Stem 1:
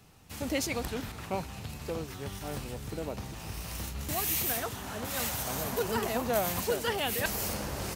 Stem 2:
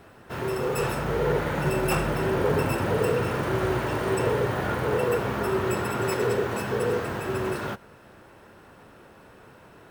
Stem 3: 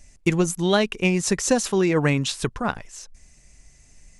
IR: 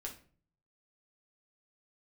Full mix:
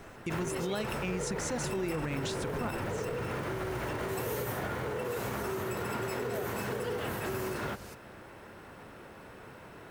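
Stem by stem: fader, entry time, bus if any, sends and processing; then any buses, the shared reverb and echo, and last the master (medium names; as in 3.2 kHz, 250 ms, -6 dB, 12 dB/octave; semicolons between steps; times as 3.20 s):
-13.0 dB, 0.00 s, no send, none
+1.0 dB, 0.00 s, no send, peaking EQ 2.1 kHz +4 dB 0.25 oct; peak limiter -20.5 dBFS, peak gain reduction 8 dB; compression, threshold -33 dBFS, peak gain reduction 8 dB
-11.0 dB, 0.00 s, no send, none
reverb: none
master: peak limiter -24.5 dBFS, peak gain reduction 7.5 dB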